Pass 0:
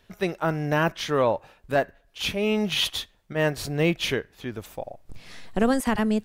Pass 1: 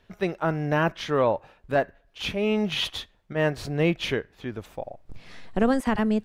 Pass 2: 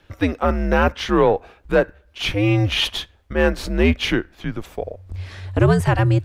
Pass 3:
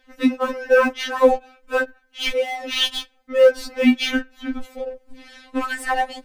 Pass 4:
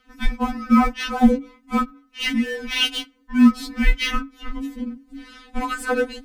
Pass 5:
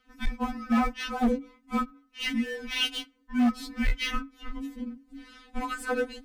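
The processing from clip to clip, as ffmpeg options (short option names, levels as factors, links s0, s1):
-af "lowpass=f=3100:p=1"
-af "afreqshift=-94,acontrast=89"
-filter_complex "[0:a]asplit=2[s0][s1];[s1]acrusher=bits=3:mix=0:aa=0.5,volume=0.266[s2];[s0][s2]amix=inputs=2:normalize=0,afftfilt=real='re*3.46*eq(mod(b,12),0)':imag='im*3.46*eq(mod(b,12),0)':win_size=2048:overlap=0.75"
-af "afreqshift=-280"
-af "volume=3.98,asoftclip=hard,volume=0.251,volume=0.447"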